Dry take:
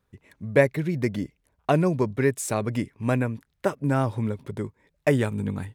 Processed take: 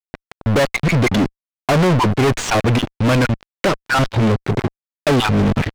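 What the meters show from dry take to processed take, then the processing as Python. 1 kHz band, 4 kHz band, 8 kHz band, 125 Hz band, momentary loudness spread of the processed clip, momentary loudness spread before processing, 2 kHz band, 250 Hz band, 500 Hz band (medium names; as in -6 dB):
+11.5 dB, +19.5 dB, +7.5 dB, +9.0 dB, 7 LU, 13 LU, +10.5 dB, +8.5 dB, +5.5 dB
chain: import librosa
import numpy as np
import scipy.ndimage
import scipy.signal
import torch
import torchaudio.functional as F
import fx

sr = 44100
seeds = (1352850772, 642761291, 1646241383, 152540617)

y = fx.spec_dropout(x, sr, seeds[0], share_pct=32)
y = fx.peak_eq(y, sr, hz=6400.0, db=14.0, octaves=2.4)
y = fx.fuzz(y, sr, gain_db=38.0, gate_db=-37.0)
y = fx.air_absorb(y, sr, metres=280.0)
y = fx.leveller(y, sr, passes=3)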